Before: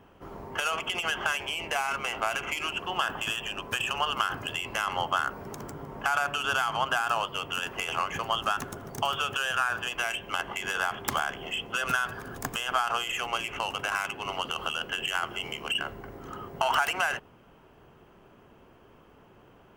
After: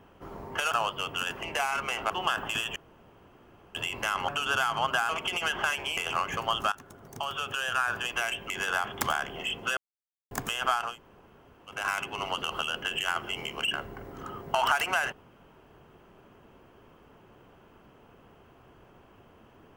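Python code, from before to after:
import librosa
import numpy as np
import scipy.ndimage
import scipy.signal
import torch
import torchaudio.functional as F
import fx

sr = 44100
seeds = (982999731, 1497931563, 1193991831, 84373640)

y = fx.edit(x, sr, fx.swap(start_s=0.71, length_s=0.88, other_s=7.07, other_length_s=0.72),
    fx.cut(start_s=2.26, length_s=0.56),
    fx.room_tone_fill(start_s=3.48, length_s=0.99),
    fx.cut(start_s=5.0, length_s=1.26),
    fx.fade_in_from(start_s=8.54, length_s=1.2, floor_db=-16.5),
    fx.cut(start_s=10.32, length_s=0.25),
    fx.silence(start_s=11.84, length_s=0.54),
    fx.room_tone_fill(start_s=12.94, length_s=0.89, crossfade_s=0.24), tone=tone)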